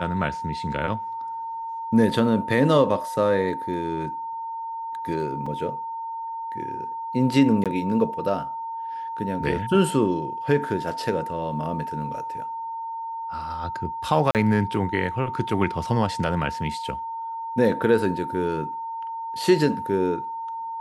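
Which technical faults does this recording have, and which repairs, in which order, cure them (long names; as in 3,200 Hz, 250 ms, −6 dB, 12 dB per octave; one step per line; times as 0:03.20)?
whistle 910 Hz −29 dBFS
0:05.46: drop-out 4.2 ms
0:07.64–0:07.66: drop-out 17 ms
0:14.31–0:14.35: drop-out 38 ms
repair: notch filter 910 Hz, Q 30
repair the gap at 0:05.46, 4.2 ms
repair the gap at 0:07.64, 17 ms
repair the gap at 0:14.31, 38 ms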